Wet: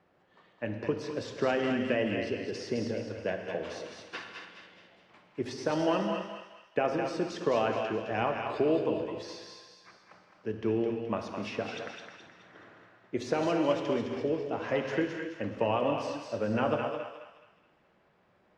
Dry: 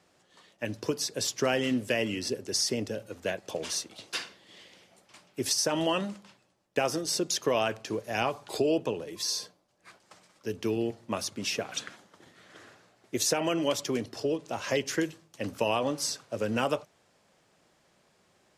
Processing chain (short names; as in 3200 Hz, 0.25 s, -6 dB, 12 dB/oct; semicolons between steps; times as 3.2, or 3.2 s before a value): LPF 2000 Hz 12 dB/oct; on a send: thinning echo 0.212 s, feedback 44%, high-pass 910 Hz, level -5 dB; on the sum: non-linear reverb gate 0.3 s flat, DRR 4.5 dB; gain -1 dB